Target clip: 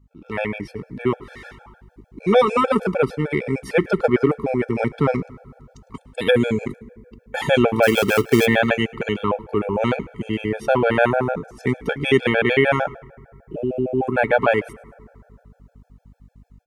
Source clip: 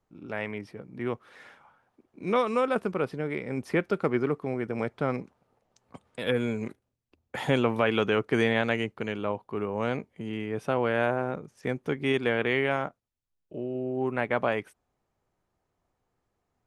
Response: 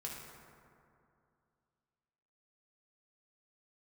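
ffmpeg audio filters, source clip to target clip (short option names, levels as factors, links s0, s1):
-filter_complex "[0:a]aeval=exprs='val(0)+0.00158*(sin(2*PI*50*n/s)+sin(2*PI*2*50*n/s)/2+sin(2*PI*3*50*n/s)/3+sin(2*PI*4*50*n/s)/4+sin(2*PI*5*50*n/s)/5)':c=same,asplit=3[s0][s1][s2];[s0]afade=t=out:st=7.82:d=0.02[s3];[s1]acrusher=bits=3:mode=log:mix=0:aa=0.000001,afade=t=in:st=7.82:d=0.02,afade=t=out:st=8.45:d=0.02[s4];[s2]afade=t=in:st=8.45:d=0.02[s5];[s3][s4][s5]amix=inputs=3:normalize=0,dynaudnorm=f=180:g=3:m=2.82,asplit=3[s6][s7][s8];[s7]adelay=106,afreqshift=-73,volume=0.075[s9];[s8]adelay=212,afreqshift=-146,volume=0.0269[s10];[s6][s9][s10]amix=inputs=3:normalize=0,asplit=2[s11][s12];[1:a]atrim=start_sample=2205[s13];[s12][s13]afir=irnorm=-1:irlink=0,volume=0.126[s14];[s11][s14]amix=inputs=2:normalize=0,afftfilt=real='re*gt(sin(2*PI*6.6*pts/sr)*(1-2*mod(floor(b*sr/1024/450),2)),0)':imag='im*gt(sin(2*PI*6.6*pts/sr)*(1-2*mod(floor(b*sr/1024/450),2)),0)':win_size=1024:overlap=0.75,volume=1.41"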